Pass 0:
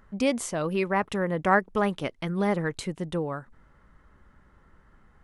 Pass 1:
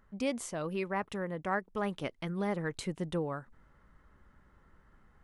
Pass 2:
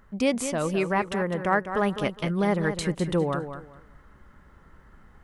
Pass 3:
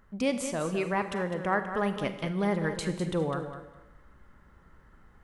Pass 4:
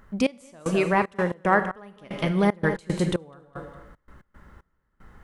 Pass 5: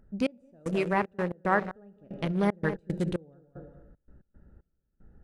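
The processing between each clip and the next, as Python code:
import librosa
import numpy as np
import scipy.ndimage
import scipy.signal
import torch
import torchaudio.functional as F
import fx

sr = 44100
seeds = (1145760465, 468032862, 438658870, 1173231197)

y1 = fx.rider(x, sr, range_db=10, speed_s=0.5)
y1 = y1 * librosa.db_to_amplitude(-8.0)
y2 = fx.echo_feedback(y1, sr, ms=204, feedback_pct=22, wet_db=-9.5)
y2 = y2 * librosa.db_to_amplitude(9.0)
y3 = fx.rev_schroeder(y2, sr, rt60_s=0.9, comb_ms=33, drr_db=10.0)
y3 = y3 * librosa.db_to_amplitude(-4.5)
y4 = fx.step_gate(y3, sr, bpm=114, pattern='xx...xxx.x.', floor_db=-24.0, edge_ms=4.5)
y4 = y4 * librosa.db_to_amplitude(7.5)
y5 = fx.wiener(y4, sr, points=41)
y5 = y5 * librosa.db_to_amplitude(-4.5)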